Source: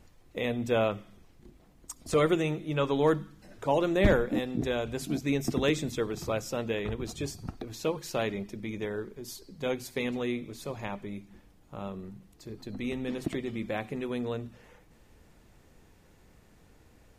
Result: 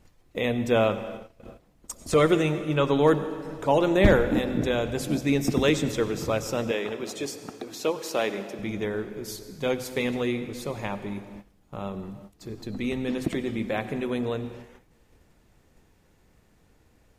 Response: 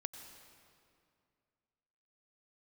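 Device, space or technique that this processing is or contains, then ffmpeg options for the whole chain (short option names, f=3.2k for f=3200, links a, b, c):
keyed gated reverb: -filter_complex "[0:a]asplit=3[a][b][c];[1:a]atrim=start_sample=2205[d];[b][d]afir=irnorm=-1:irlink=0[e];[c]apad=whole_len=757967[f];[e][f]sidechaingate=range=-26dB:threshold=-53dB:ratio=16:detection=peak,volume=6dB[g];[a][g]amix=inputs=2:normalize=0,asettb=1/sr,asplit=3[h][i][j];[h]atrim=end=6.714[k];[i]atrim=start=6.71:end=8.59,asetpts=PTS-STARTPTS,afade=t=in:d=0.004:c=qsin,afade=t=out:st=1.876:d=0.004:c=qsin,highpass=280[l];[j]atrim=start=8.586[m];[k][l]acrossfade=d=0.004:c1=hsin:c2=qsin[n];[n][m]acrossfade=d=0.004:c1=qsin:c2=hsin,volume=-3dB"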